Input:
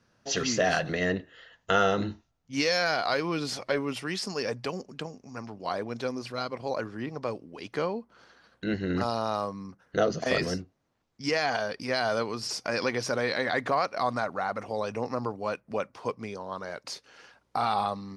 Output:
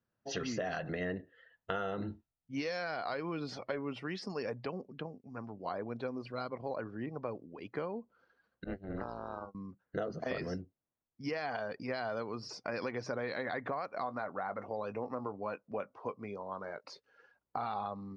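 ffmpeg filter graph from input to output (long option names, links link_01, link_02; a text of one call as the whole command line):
ffmpeg -i in.wav -filter_complex "[0:a]asettb=1/sr,asplit=3[link_01][link_02][link_03];[link_01]atrim=end=4.654[link_04];[link_02]atrim=start=4.65:end=5.3,asetpts=PTS-STARTPTS,afade=type=in:duration=0.004:curve=qsin,afade=type=out:start_time=0.646:duration=0.004:curve=qsin,lowpass=5300,agate=range=-33dB:threshold=-52dB:ratio=3:release=100:detection=peak[link_05];[link_03]atrim=start=5.296[link_06];[link_04][link_05]acrossfade=duration=0.004:curve1=hsin:curve2=qsin[link_07];[link_07][link_06]acrossfade=duration=0.004:curve1=qsin:curve2=hsin,asettb=1/sr,asplit=3[link_08][link_09][link_10];[link_08]atrim=end=8.644[link_11];[link_09]atrim=start=8.64:end=9.55,asetpts=PTS-STARTPTS,afade=type=in:duration=0.004:curve=qsin,afade=type=out:start_time=0.906:duration=0.004:curve=qsin,agate=range=-33dB:threshold=-26dB:ratio=3:release=100:detection=peak,tremolo=f=290:d=0.919[link_12];[link_10]atrim=start=9.546[link_13];[link_11][link_12]acrossfade=duration=0.004:curve1=hsin:curve2=qsin[link_14];[link_14][link_13]acrossfade=duration=0.004:curve1=qsin:curve2=hsin,asettb=1/sr,asplit=3[link_15][link_16][link_17];[link_15]atrim=end=14.014[link_18];[link_16]atrim=start=14.01:end=16.91,asetpts=PTS-STARTPTS,afade=type=in:duration=0.004:curve=qsin,afade=type=out:start_time=2.896:duration=0.004:curve=qsin,lowshelf=frequency=120:gain=-7,asplit=2[link_19][link_20];[link_20]adelay=20,volume=-12.5dB[link_21];[link_19][link_21]amix=inputs=2:normalize=0,atrim=end_sample=127890[link_22];[link_17]atrim=start=16.906[link_23];[link_18][link_22]acrossfade=duration=0.004:curve1=hsin:curve2=qsin[link_24];[link_24][link_23]acrossfade=duration=0.004:curve1=qsin:curve2=hsin,aemphasis=mode=reproduction:type=75kf,afftdn=noise_reduction=14:noise_floor=-49,acompressor=threshold=-29dB:ratio=6,volume=-4dB" out.wav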